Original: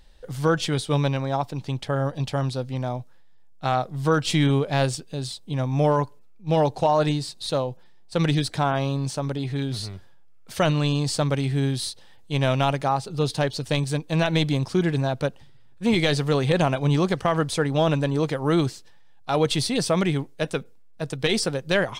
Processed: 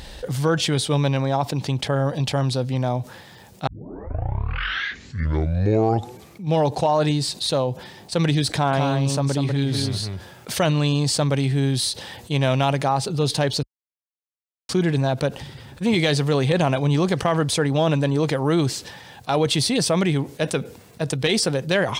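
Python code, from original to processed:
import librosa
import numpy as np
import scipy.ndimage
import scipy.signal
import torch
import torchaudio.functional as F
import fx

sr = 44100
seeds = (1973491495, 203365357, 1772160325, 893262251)

y = fx.echo_single(x, sr, ms=195, db=-5.5, at=(8.48, 10.58))
y = fx.edit(y, sr, fx.tape_start(start_s=3.67, length_s=2.86),
    fx.silence(start_s=13.63, length_s=1.06), tone=tone)
y = scipy.signal.sosfilt(scipy.signal.butter(2, 53.0, 'highpass', fs=sr, output='sos'), y)
y = fx.peak_eq(y, sr, hz=1300.0, db=-2.5, octaves=0.42)
y = fx.env_flatten(y, sr, amount_pct=50)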